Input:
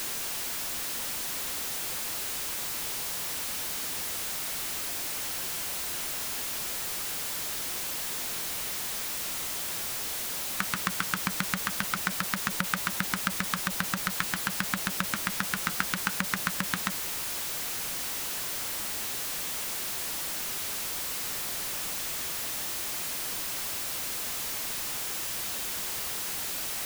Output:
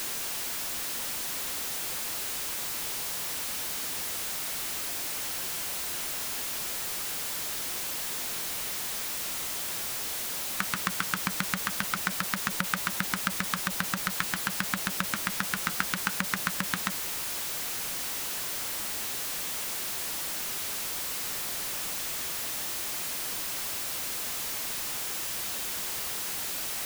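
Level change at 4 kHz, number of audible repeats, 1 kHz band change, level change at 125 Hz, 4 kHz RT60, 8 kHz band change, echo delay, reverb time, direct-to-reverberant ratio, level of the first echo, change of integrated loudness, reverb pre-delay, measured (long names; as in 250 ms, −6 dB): 0.0 dB, no echo audible, 0.0 dB, −1.0 dB, no reverb audible, 0.0 dB, no echo audible, no reverb audible, no reverb audible, no echo audible, 0.0 dB, no reverb audible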